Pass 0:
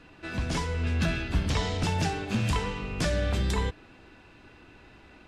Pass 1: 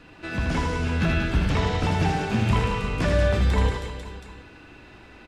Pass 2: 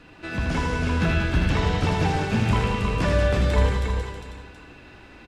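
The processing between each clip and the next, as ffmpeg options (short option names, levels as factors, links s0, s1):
-filter_complex "[0:a]aecho=1:1:80|184|319.2|495|723.4:0.631|0.398|0.251|0.158|0.1,acrossover=split=3000[s0][s1];[s1]acompressor=threshold=0.00562:ratio=4:attack=1:release=60[s2];[s0][s2]amix=inputs=2:normalize=0,volume=1.5"
-af "aecho=1:1:321:0.473"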